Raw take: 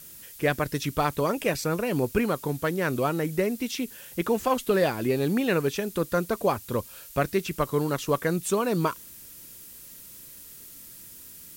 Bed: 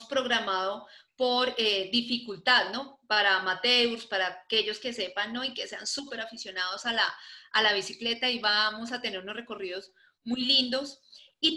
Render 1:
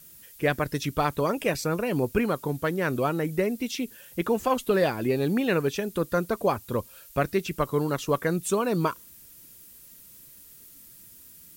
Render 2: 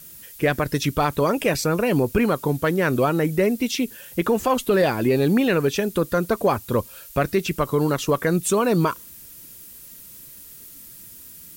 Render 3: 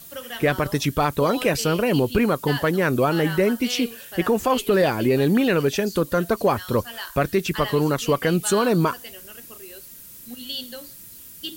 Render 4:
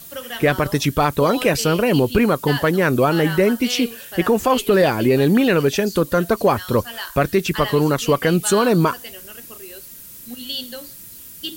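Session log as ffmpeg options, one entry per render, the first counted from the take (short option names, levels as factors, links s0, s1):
-af "afftdn=nr=6:nf=-46"
-af "acontrast=81,alimiter=limit=0.316:level=0:latency=1:release=52"
-filter_complex "[1:a]volume=0.376[s0];[0:a][s0]amix=inputs=2:normalize=0"
-af "volume=1.5"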